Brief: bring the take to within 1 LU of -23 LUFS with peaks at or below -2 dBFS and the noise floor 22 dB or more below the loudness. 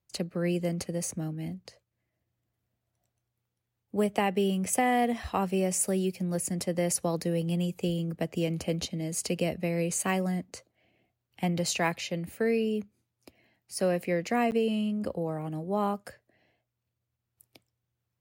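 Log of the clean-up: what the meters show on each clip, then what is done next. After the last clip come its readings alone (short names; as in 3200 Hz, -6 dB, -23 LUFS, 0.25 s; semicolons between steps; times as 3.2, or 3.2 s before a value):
dropouts 1; longest dropout 9.2 ms; loudness -30.0 LUFS; peak -12.5 dBFS; loudness target -23.0 LUFS
-> interpolate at 14.51, 9.2 ms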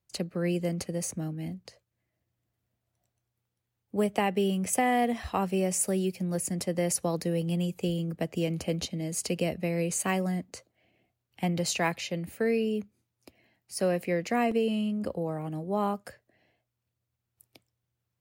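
dropouts 0; loudness -30.0 LUFS; peak -12.5 dBFS; loudness target -23.0 LUFS
-> gain +7 dB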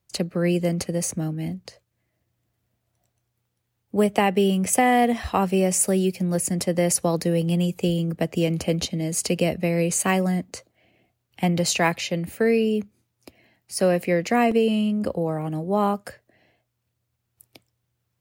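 loudness -23.0 LUFS; peak -5.5 dBFS; noise floor -77 dBFS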